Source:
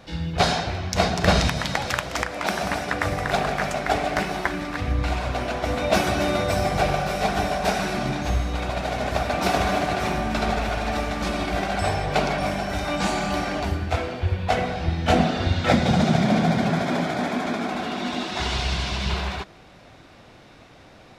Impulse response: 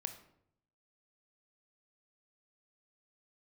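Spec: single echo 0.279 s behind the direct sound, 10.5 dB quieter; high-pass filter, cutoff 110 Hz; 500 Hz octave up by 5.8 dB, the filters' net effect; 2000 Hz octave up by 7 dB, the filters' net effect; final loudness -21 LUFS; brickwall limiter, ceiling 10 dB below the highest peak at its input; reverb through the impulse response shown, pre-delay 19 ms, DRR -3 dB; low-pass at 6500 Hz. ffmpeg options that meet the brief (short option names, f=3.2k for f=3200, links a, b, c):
-filter_complex "[0:a]highpass=110,lowpass=6.5k,equalizer=f=500:t=o:g=7,equalizer=f=2k:t=o:g=8.5,alimiter=limit=-10dB:level=0:latency=1,aecho=1:1:279:0.299,asplit=2[a][b];[1:a]atrim=start_sample=2205,adelay=19[c];[b][c]afir=irnorm=-1:irlink=0,volume=5dB[d];[a][d]amix=inputs=2:normalize=0,volume=-4.5dB"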